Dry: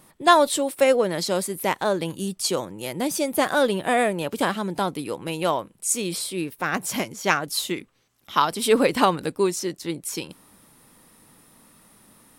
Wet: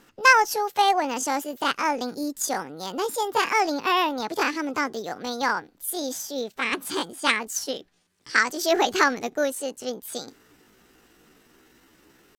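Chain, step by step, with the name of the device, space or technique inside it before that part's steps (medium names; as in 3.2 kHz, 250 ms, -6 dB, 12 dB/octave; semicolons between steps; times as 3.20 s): chipmunk voice (pitch shift +7 st); low-pass 9.8 kHz 12 dB/octave; peaking EQ 640 Hz -4.5 dB 0.65 oct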